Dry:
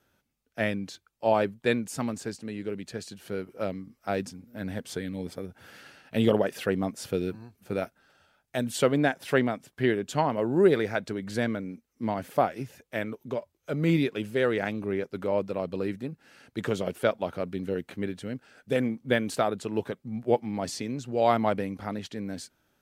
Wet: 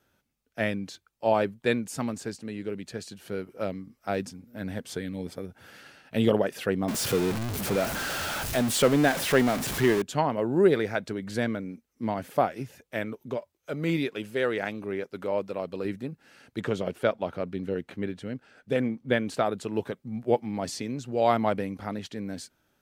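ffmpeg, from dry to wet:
-filter_complex "[0:a]asettb=1/sr,asplit=3[a][b][c];[a]atrim=end=6.884[d];[b]atrim=start=6.88:end=10.02,asetpts=PTS-STARTPTS,afade=t=in:d=0.004:c=qsin,afade=t=out:st=3.136:d=0.004:c=qsin,aeval=exprs='val(0)+0.5*0.0531*sgn(val(0))':c=same[e];[c]atrim=start=10.016[f];[d][e]acrossfade=d=0.004:c1=hsin:c2=qsin[g];[g][f]acrossfade=d=0.004:c1=qsin:c2=hsin,asettb=1/sr,asplit=3[h][i][j];[h]atrim=end=13.374[k];[i]atrim=start=13.37:end=15.85,asetpts=PTS-STARTPTS,afade=t=in:d=0.004:c=qsin,afade=t=out:st=2.476:d=0.004:c=qsin,lowshelf=f=260:g=-7[l];[j]atrim=start=15.846[m];[k][l]acrossfade=d=0.004:c1=hsin:c2=qsin[n];[n][m]acrossfade=d=0.004:c1=qsin:c2=hsin,asettb=1/sr,asplit=3[o][p][q];[o]atrim=end=16.604[r];[p]atrim=start=16.6:end=19.46,asetpts=PTS-STARTPTS,afade=t=in:d=0.004:c=qsin,afade=t=out:st=2.856:d=0.004:c=qsin,highshelf=f=7k:g=-9.5[s];[q]atrim=start=19.456[t];[r][s]acrossfade=d=0.004:c1=hsin:c2=qsin[u];[u][t]acrossfade=d=0.004:c1=qsin:c2=hsin"

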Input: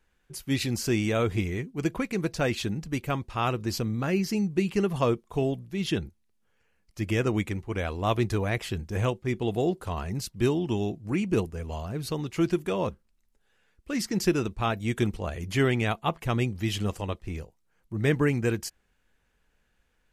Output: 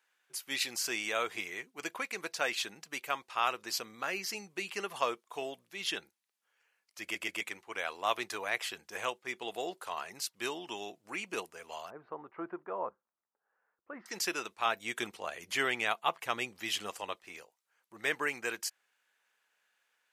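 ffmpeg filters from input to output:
-filter_complex "[0:a]asettb=1/sr,asplit=3[a][b][c];[a]atrim=end=11.904[d];[b]atrim=start=11.9:end=14.06,asetpts=PTS-STARTPTS,afade=t=in:d=0.004:c=qsin,afade=t=out:st=2.156:d=0.004:c=qsin,lowpass=f=1.3k:w=0.5412,lowpass=f=1.3k:w=1.3066[e];[c]atrim=start=14.056[f];[d][e]acrossfade=d=0.004:c1=hsin:c2=qsin[g];[g][f]acrossfade=d=0.004:c1=qsin:c2=hsin,asettb=1/sr,asplit=3[h][i][j];[h]atrim=end=14.654[k];[i]atrim=start=14.65:end=17.25,asetpts=PTS-STARTPTS,afade=t=in:d=0.004:c=qsin,afade=t=out:st=2.596:d=0.004:c=qsin,lowshelf=f=320:g=6[l];[j]atrim=start=17.246[m];[k][l]acrossfade=d=0.004:c1=hsin:c2=qsin[n];[n][m]acrossfade=d=0.004:c1=qsin:c2=hsin,asplit=4[o][p][q][r];[o]atrim=end=7.152[s];[p]atrim=start=7.018:end=7.152[t];[q]atrim=start=7.018:end=7.152[u];[r]atrim=start=7.408[v];[s][t]acrossfade=d=0.004:c1=hsin:c2=hsin[w];[w][u]acrossfade=d=0.004:c1=hsin:c2=hsin[x];[x][v]acrossfade=d=0.004:c1=hsin:c2=hsin,highpass=860"

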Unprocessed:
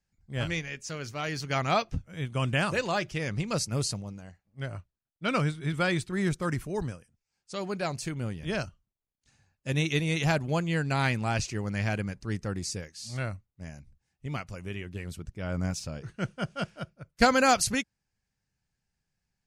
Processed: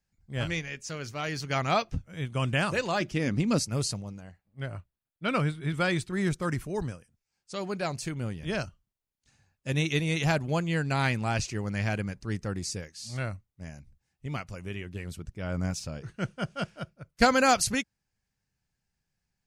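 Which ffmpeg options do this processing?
-filter_complex "[0:a]asettb=1/sr,asplit=3[a][b][c];[a]atrim=end=3.004[d];[b]atrim=start=3:end=3.6,asetpts=PTS-STARTPTS,afade=t=in:d=0.004:c=qsin,afade=t=out:st=0.596:d=0.004:c=qsin,equalizer=f=260:t=o:w=0.77:g=13[e];[c]atrim=start=3.596[f];[d][e]acrossfade=d=0.004:c1=hsin:c2=qsin[g];[g][f]acrossfade=d=0.004:c1=qsin:c2=hsin,asettb=1/sr,asplit=3[h][i][j];[h]atrim=end=4.204[k];[i]atrim=start=4.2:end=5.72,asetpts=PTS-STARTPTS,afade=t=in:d=0.004:c=qsin,afade=t=out:st=1.516:d=0.004:c=qsin,equalizer=f=6.1k:w=1.9:g=-8[l];[j]atrim=start=5.716[m];[k][l]acrossfade=d=0.004:c1=hsin:c2=qsin[n];[n][m]acrossfade=d=0.004:c1=qsin:c2=hsin"

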